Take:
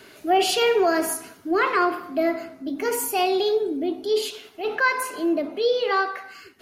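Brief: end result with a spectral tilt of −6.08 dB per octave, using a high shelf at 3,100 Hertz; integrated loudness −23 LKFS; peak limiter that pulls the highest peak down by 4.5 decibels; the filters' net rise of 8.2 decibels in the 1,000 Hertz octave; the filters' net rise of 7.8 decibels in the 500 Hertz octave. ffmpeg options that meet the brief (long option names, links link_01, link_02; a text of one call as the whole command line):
ffmpeg -i in.wav -af "equalizer=frequency=500:width_type=o:gain=8,equalizer=frequency=1000:width_type=o:gain=7.5,highshelf=frequency=3100:gain=3.5,volume=-5dB,alimiter=limit=-12.5dB:level=0:latency=1" out.wav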